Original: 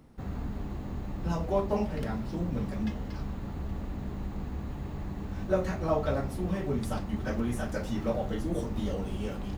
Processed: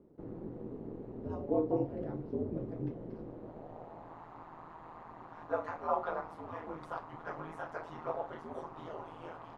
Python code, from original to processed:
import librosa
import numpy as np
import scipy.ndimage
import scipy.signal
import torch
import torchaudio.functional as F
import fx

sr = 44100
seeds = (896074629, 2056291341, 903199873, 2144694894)

y = fx.filter_sweep_bandpass(x, sr, from_hz=360.0, to_hz=1000.0, start_s=3.15, end_s=4.25, q=2.7)
y = y * np.sin(2.0 * np.pi * 81.0 * np.arange(len(y)) / sr)
y = y * librosa.db_to_amplitude(6.5)